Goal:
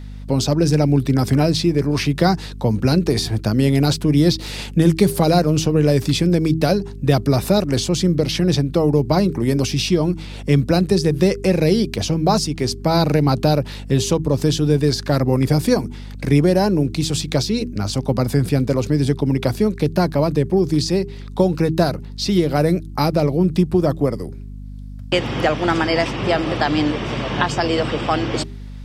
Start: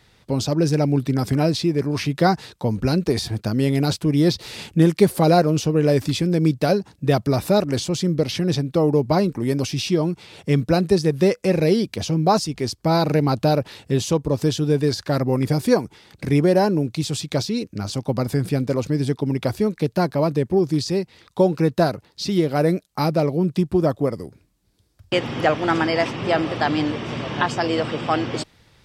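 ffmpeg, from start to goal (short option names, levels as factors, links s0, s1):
-filter_complex "[0:a]acrossover=split=220|3000[s0][s1][s2];[s1]acompressor=threshold=0.0891:ratio=2.5[s3];[s0][s3][s2]amix=inputs=3:normalize=0,aeval=exprs='val(0)+0.0158*(sin(2*PI*50*n/s)+sin(2*PI*2*50*n/s)/2+sin(2*PI*3*50*n/s)/3+sin(2*PI*4*50*n/s)/4+sin(2*PI*5*50*n/s)/5)':c=same,bandreject=f=80.24:t=h:w=4,bandreject=f=160.48:t=h:w=4,bandreject=f=240.72:t=h:w=4,bandreject=f=320.96:t=h:w=4,bandreject=f=401.2:t=h:w=4,volume=1.68"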